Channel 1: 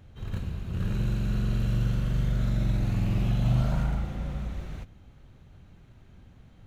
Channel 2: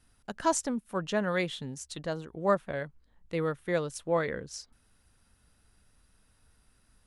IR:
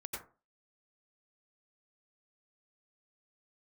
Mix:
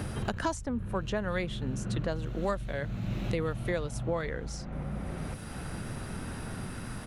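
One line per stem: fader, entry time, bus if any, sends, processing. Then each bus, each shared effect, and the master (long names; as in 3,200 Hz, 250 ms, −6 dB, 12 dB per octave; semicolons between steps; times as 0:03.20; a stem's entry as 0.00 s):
−5.5 dB, 0.00 s, no send, echo send −9.5 dB, high-shelf EQ 3,800 Hz −11.5 dB; automatic ducking −9 dB, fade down 0.30 s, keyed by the second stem
−2.0 dB, 0.00 s, no send, no echo send, no processing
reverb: not used
echo: single-tap delay 504 ms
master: multiband upward and downward compressor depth 100%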